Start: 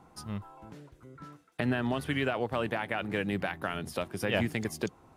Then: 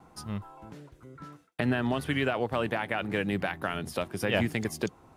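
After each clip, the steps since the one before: gate with hold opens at -50 dBFS; trim +2 dB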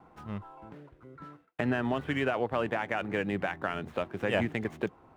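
median filter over 9 samples; tone controls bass -4 dB, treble -11 dB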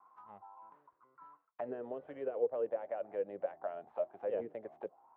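auto-wah 460–1100 Hz, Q 8.3, down, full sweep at -24.5 dBFS; trim +3 dB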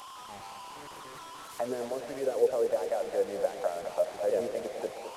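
one-bit delta coder 64 kbps, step -47.5 dBFS; thinning echo 211 ms, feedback 63%, high-pass 150 Hz, level -9 dB; trim +7.5 dB

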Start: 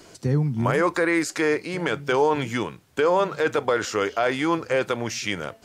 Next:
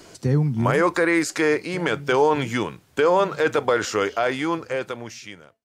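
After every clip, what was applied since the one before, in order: fade out at the end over 1.71 s; trim +2 dB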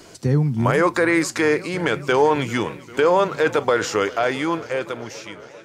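modulated delay 396 ms, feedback 74%, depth 80 cents, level -20.5 dB; trim +1.5 dB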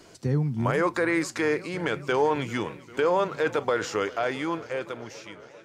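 treble shelf 6.9 kHz -4 dB; trim -6.5 dB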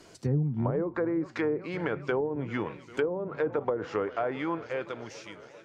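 low-pass that closes with the level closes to 360 Hz, closed at -19 dBFS; trim -2 dB

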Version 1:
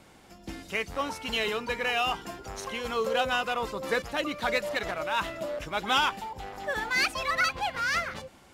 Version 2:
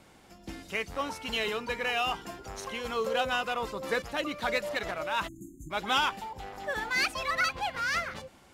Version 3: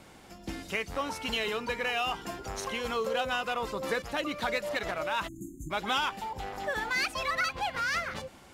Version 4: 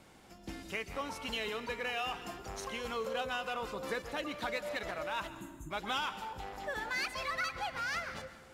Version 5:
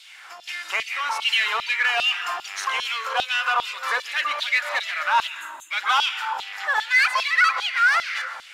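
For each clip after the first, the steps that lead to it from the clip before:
spectral selection erased 5.28–5.71 s, 370–6200 Hz; trim -2 dB
compression 2:1, threshold -35 dBFS, peak gain reduction 7 dB; trim +4 dB
plate-style reverb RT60 1.2 s, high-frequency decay 0.75×, pre-delay 115 ms, DRR 12 dB; trim -6 dB
overdrive pedal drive 14 dB, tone 4.2 kHz, clips at -23 dBFS; LFO high-pass saw down 2.5 Hz 800–3700 Hz; trim +8.5 dB

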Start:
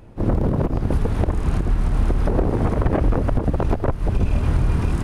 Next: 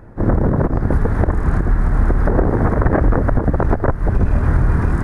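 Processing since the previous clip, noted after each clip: resonant high shelf 2.2 kHz -8 dB, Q 3; trim +4 dB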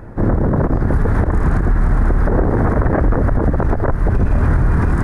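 peak limiter -13 dBFS, peak gain reduction 10 dB; trim +6 dB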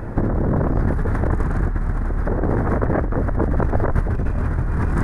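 compressor with a negative ratio -19 dBFS, ratio -1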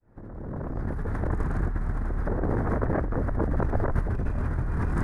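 fade-in on the opening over 1.48 s; trim -6.5 dB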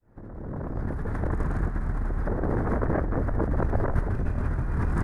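delay 184 ms -11 dB

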